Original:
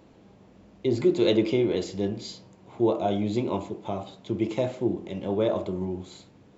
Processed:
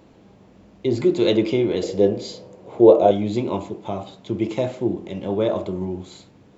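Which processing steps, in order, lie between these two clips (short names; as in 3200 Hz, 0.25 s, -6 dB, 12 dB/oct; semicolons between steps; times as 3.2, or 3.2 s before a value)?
1.83–3.11 bell 500 Hz +13.5 dB 0.87 oct; gain +3.5 dB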